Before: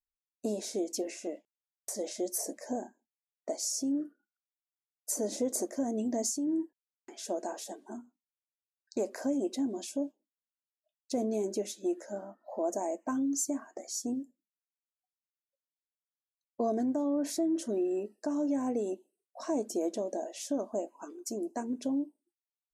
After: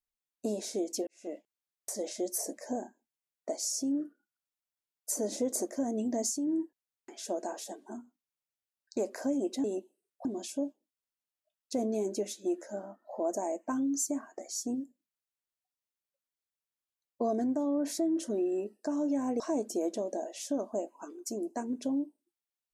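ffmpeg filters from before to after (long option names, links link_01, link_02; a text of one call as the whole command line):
ffmpeg -i in.wav -filter_complex "[0:a]asplit=5[link_01][link_02][link_03][link_04][link_05];[link_01]atrim=end=1.07,asetpts=PTS-STARTPTS,afade=type=out:start_time=1.066:duration=0.004:curve=hsin[link_06];[link_02]atrim=start=1.07:end=9.642,asetpts=PTS-STARTPTS,afade=type=in:duration=0.25:curve=qua[link_07];[link_03]atrim=start=18.788:end=19.402[link_08];[link_04]atrim=start=9.638:end=18.792[link_09];[link_05]atrim=start=19.398[link_10];[link_06][link_07]concat=n=2:v=0:a=1[link_11];[link_11][link_08]acrossfade=duration=0.004:curve1=hsin:curve2=hsin[link_12];[link_12][link_09]acrossfade=duration=0.004:curve1=hsin:curve2=hsin[link_13];[link_13][link_10]acrossfade=duration=0.004:curve1=hsin:curve2=hsin" out.wav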